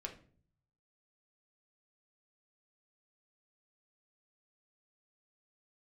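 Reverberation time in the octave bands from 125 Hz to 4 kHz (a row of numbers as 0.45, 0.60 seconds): 1.1, 0.70, 0.55, 0.40, 0.40, 0.35 seconds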